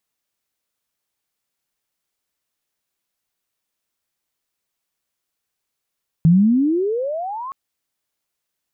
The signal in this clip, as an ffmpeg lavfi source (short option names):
-f lavfi -i "aevalsrc='pow(10,(-8-19*t/1.27)/20)*sin(2*PI*157*1.27/(34*log(2)/12)*(exp(34*log(2)/12*t/1.27)-1))':d=1.27:s=44100"